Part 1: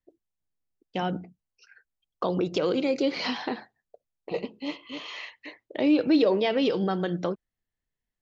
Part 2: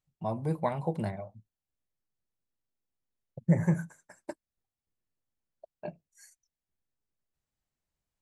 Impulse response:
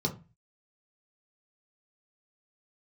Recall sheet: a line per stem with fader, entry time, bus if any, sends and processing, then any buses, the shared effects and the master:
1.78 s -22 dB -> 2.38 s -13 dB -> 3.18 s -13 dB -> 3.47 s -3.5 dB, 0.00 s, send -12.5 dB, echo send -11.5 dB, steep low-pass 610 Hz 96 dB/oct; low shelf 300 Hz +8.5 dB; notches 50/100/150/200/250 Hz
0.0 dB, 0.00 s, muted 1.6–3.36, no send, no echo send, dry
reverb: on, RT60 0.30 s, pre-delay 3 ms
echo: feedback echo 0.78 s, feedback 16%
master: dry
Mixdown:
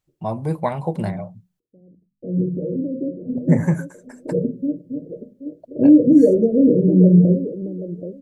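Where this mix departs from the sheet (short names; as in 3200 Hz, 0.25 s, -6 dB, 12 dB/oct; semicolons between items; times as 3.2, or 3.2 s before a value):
stem 1 -22.0 dB -> -12.5 dB; stem 2 0.0 dB -> +7.5 dB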